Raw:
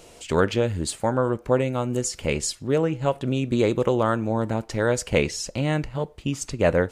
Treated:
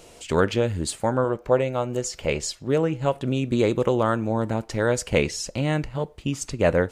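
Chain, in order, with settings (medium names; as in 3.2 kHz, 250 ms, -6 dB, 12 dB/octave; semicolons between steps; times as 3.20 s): 1.24–2.67 s: fifteen-band graphic EQ 100 Hz -5 dB, 250 Hz -5 dB, 630 Hz +4 dB, 10 kHz -8 dB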